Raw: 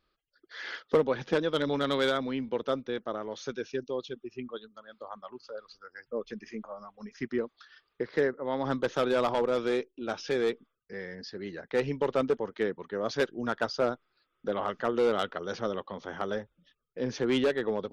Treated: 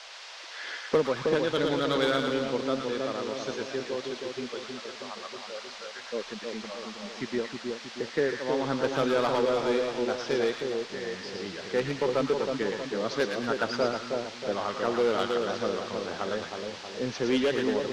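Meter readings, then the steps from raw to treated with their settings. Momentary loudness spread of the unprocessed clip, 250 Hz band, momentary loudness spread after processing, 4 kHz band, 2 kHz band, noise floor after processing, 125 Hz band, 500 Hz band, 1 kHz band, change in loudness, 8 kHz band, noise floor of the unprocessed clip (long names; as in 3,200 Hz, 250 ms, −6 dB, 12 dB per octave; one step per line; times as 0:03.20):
17 LU, +2.0 dB, 12 LU, +5.0 dB, +3.0 dB, −43 dBFS, +1.5 dB, +2.0 dB, +2.0 dB, +1.5 dB, can't be measured, −79 dBFS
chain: noise in a band 500–5,300 Hz −46 dBFS
echo with a time of its own for lows and highs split 1,100 Hz, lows 317 ms, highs 113 ms, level −4 dB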